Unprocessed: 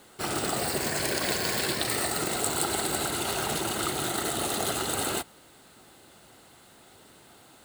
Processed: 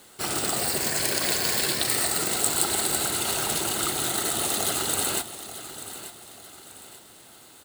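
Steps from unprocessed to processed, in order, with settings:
high-shelf EQ 3,100 Hz +7.5 dB
on a send: repeating echo 887 ms, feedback 39%, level −13 dB
on the sum: level −1 dB

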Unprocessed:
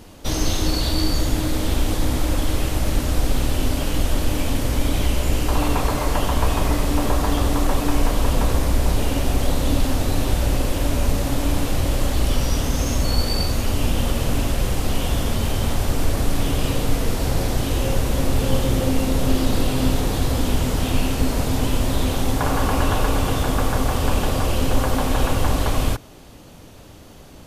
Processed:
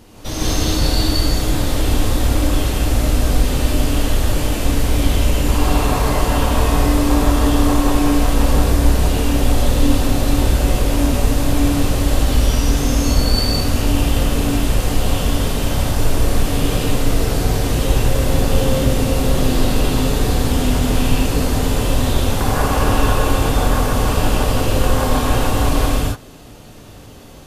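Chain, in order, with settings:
reverb whose tail is shaped and stops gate 210 ms rising, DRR −5.5 dB
level −2.5 dB

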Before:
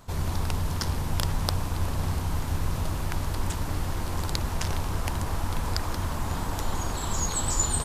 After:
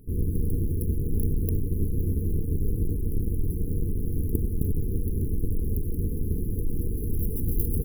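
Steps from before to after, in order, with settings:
each half-wave held at its own peak
brick-wall band-stop 490–10,000 Hz
level −2.5 dB

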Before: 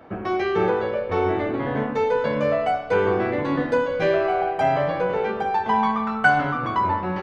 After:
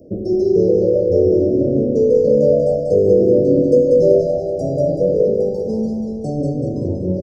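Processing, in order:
Chebyshev band-stop filter 580–5,100 Hz, order 5
high-shelf EQ 5,600 Hz −3 dB, from 0:05.95 −9 dB
repeating echo 190 ms, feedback 49%, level −4 dB
level +8 dB

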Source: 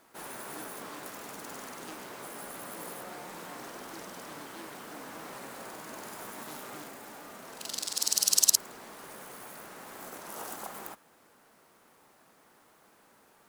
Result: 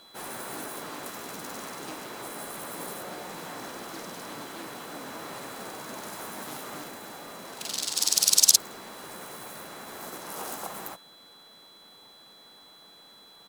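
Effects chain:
steady tone 4,000 Hz −56 dBFS
pitch-shifted copies added −3 semitones −5 dB
level +3 dB

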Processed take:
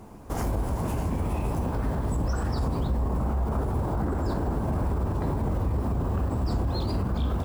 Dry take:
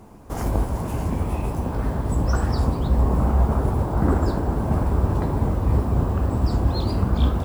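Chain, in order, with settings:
brickwall limiter −19.5 dBFS, peak gain reduction 11 dB

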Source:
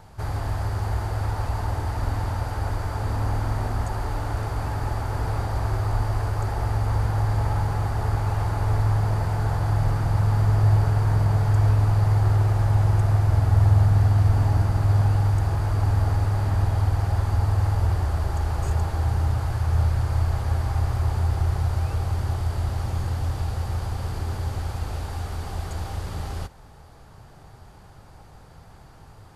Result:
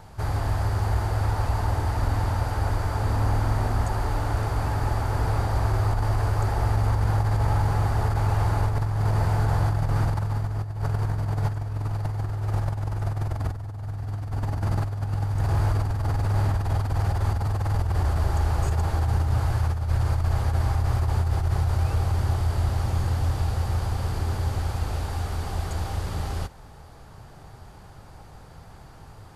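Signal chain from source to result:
compressor whose output falls as the input rises −22 dBFS, ratio −0.5

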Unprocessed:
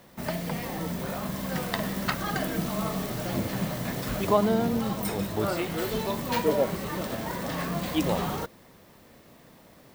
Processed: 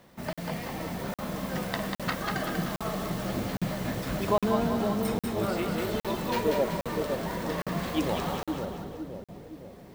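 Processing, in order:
high-shelf EQ 7,000 Hz −5 dB
on a send: echo with a time of its own for lows and highs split 630 Hz, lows 514 ms, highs 192 ms, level −4 dB
on the sum: regular buffer underruns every 0.81 s, samples 2,048, zero, from 0:00.33
level −2.5 dB

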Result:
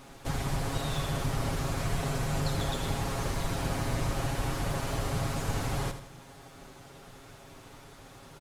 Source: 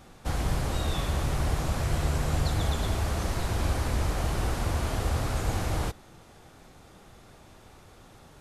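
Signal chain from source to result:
lower of the sound and its delayed copy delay 7.3 ms
in parallel at 0 dB: downward compressor, threshold −44 dBFS, peak gain reduction 18.5 dB
on the sum: repeating echo 80 ms, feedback 49%, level −10.5 dB
level −2.5 dB

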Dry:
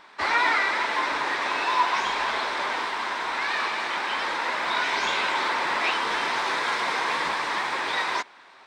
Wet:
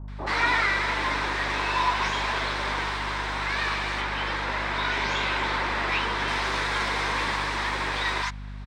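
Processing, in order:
0:03.93–0:06.20: high-shelf EQ 6,200 Hz −8 dB
multiband delay without the direct sound lows, highs 80 ms, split 860 Hz
mains hum 50 Hz, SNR 15 dB
bass and treble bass +6 dB, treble 0 dB

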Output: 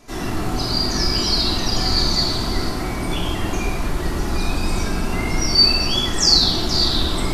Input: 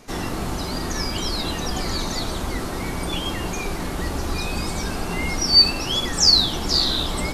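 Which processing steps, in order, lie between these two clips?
0:00.56–0:02.69: parametric band 4,600 Hz +13.5 dB 0.36 octaves
rectangular room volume 1,300 cubic metres, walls mixed, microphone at 3 metres
level −4 dB

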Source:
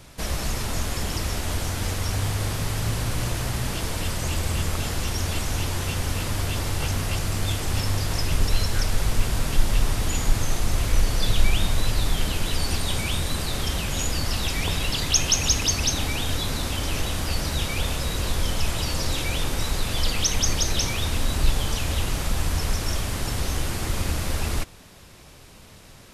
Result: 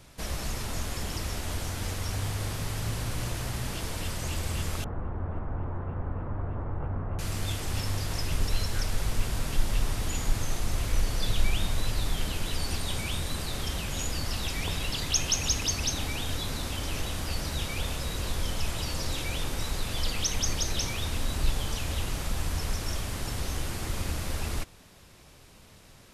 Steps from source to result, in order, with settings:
0:04.84–0:07.19: low-pass filter 1,300 Hz 24 dB per octave
level −6 dB

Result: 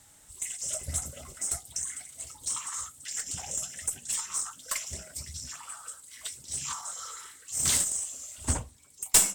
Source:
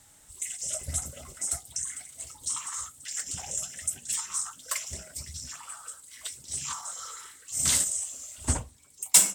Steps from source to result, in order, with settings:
one-sided soft clipper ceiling −16.5 dBFS

